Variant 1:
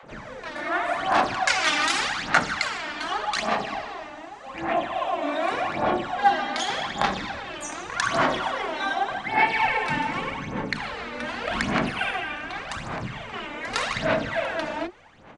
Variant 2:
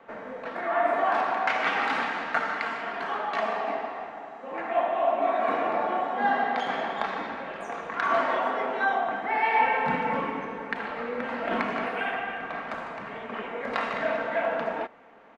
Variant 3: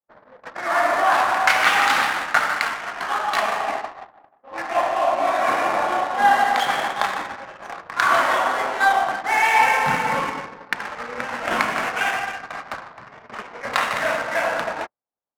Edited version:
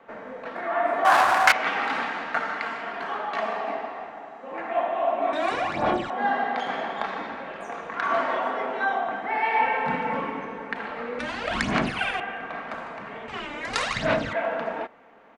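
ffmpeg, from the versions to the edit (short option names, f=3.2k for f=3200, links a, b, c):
-filter_complex "[0:a]asplit=3[a][b][c];[1:a]asplit=5[d][e][f][g][h];[d]atrim=end=1.052[i];[2:a]atrim=start=1.048:end=1.522[j];[e]atrim=start=1.518:end=5.332[k];[a]atrim=start=5.328:end=6.102[l];[f]atrim=start=6.098:end=11.192[m];[b]atrim=start=11.188:end=12.202[n];[g]atrim=start=12.198:end=13.282[o];[c]atrim=start=13.278:end=14.332[p];[h]atrim=start=14.328[q];[i][j]acrossfade=d=0.004:c1=hsin:c2=hsin[r];[r][k]acrossfade=d=0.004:c1=hsin:c2=hsin[s];[s][l]acrossfade=d=0.004:c1=hsin:c2=hsin[t];[t][m]acrossfade=d=0.004:c1=hsin:c2=hsin[u];[u][n]acrossfade=d=0.004:c1=hsin:c2=hsin[v];[v][o]acrossfade=d=0.004:c1=hsin:c2=hsin[w];[w][p]acrossfade=d=0.004:c1=hsin:c2=hsin[x];[x][q]acrossfade=d=0.004:c1=hsin:c2=hsin"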